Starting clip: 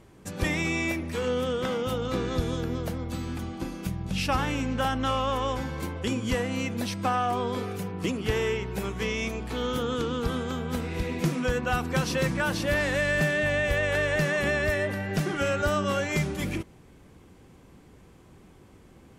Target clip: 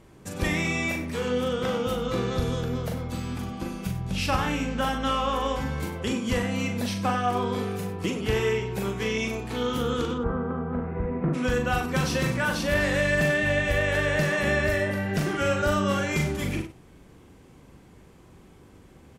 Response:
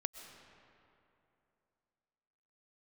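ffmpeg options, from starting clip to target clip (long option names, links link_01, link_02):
-filter_complex "[0:a]asplit=3[link_01][link_02][link_03];[link_01]afade=type=out:start_time=10.13:duration=0.02[link_04];[link_02]lowpass=frequency=1500:width=0.5412,lowpass=frequency=1500:width=1.3066,afade=type=in:start_time=10.13:duration=0.02,afade=type=out:start_time=11.33:duration=0.02[link_05];[link_03]afade=type=in:start_time=11.33:duration=0.02[link_06];[link_04][link_05][link_06]amix=inputs=3:normalize=0,asplit=2[link_07][link_08];[link_08]aecho=0:1:40.82|96.21:0.562|0.251[link_09];[link_07][link_09]amix=inputs=2:normalize=0"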